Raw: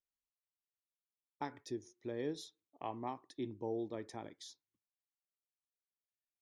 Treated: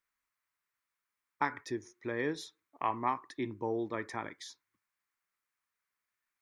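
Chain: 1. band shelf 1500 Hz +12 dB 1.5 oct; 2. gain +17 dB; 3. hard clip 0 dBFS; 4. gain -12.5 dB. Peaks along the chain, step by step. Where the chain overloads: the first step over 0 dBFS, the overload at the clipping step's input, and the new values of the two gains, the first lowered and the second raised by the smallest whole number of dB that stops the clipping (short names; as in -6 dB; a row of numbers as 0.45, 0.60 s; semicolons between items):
-21.5, -4.5, -4.5, -17.0 dBFS; no overload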